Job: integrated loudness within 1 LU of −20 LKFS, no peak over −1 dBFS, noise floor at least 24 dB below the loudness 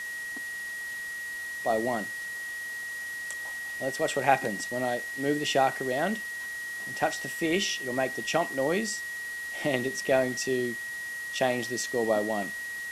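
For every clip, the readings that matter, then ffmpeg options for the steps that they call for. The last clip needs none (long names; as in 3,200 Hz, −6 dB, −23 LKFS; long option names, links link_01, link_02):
interfering tone 1,900 Hz; level of the tone −34 dBFS; background noise floor −37 dBFS; target noise floor −54 dBFS; integrated loudness −29.5 LKFS; sample peak −7.5 dBFS; target loudness −20.0 LKFS
→ -af "bandreject=frequency=1900:width=30"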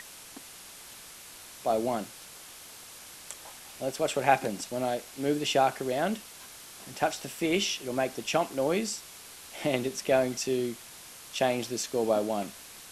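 interfering tone none found; background noise floor −48 dBFS; target noise floor −54 dBFS
→ -af "afftdn=noise_reduction=6:noise_floor=-48"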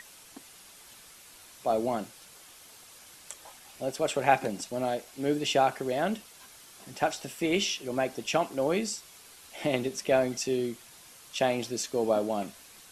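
background noise floor −53 dBFS; target noise floor −54 dBFS
→ -af "afftdn=noise_reduction=6:noise_floor=-53"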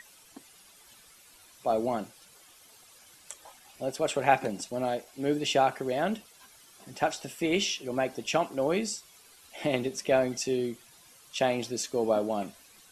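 background noise floor −57 dBFS; integrated loudness −29.5 LKFS; sample peak −8.0 dBFS; target loudness −20.0 LKFS
→ -af "volume=9.5dB,alimiter=limit=-1dB:level=0:latency=1"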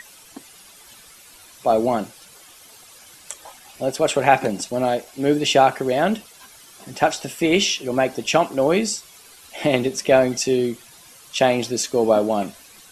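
integrated loudness −20.5 LKFS; sample peak −1.0 dBFS; background noise floor −47 dBFS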